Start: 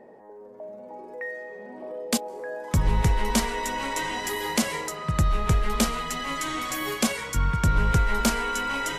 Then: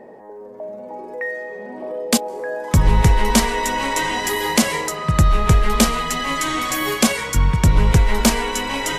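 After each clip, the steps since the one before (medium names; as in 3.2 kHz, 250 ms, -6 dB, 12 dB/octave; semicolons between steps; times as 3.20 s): band-stop 1.4 kHz, Q 26; trim +8 dB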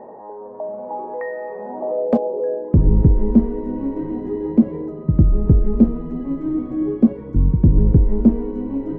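low-pass sweep 990 Hz -> 310 Hz, 1.60–2.92 s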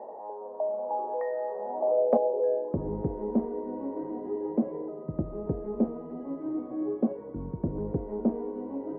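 band-pass filter 680 Hz, Q 1.6; trim -1 dB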